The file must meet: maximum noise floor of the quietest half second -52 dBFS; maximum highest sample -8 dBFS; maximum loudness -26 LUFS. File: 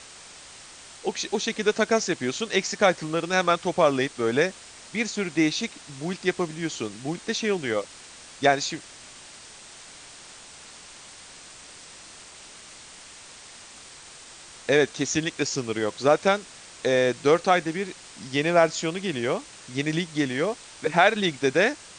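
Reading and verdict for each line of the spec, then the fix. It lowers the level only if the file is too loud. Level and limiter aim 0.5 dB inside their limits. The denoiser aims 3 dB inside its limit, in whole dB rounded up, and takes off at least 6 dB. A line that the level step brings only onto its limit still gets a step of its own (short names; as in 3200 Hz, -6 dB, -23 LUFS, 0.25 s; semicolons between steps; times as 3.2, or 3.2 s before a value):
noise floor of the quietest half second -46 dBFS: fail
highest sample -3.5 dBFS: fail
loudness -25.0 LUFS: fail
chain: denoiser 8 dB, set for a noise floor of -46 dBFS; gain -1.5 dB; limiter -8.5 dBFS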